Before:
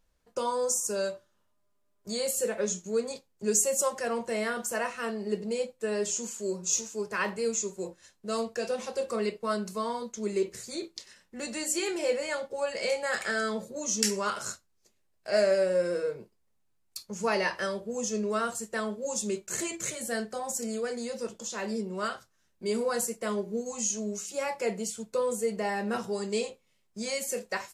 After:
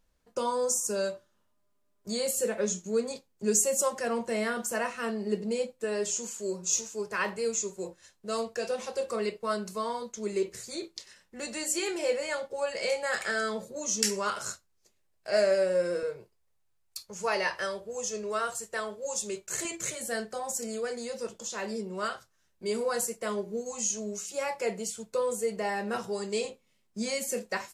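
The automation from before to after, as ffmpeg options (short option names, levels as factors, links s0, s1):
-af "asetnsamples=n=441:p=0,asendcmd='5.84 equalizer g -4;16.03 equalizer g -14;19.65 equalizer g -4.5;26.45 equalizer g 4.5',equalizer=f=240:t=o:w=0.77:g=2.5"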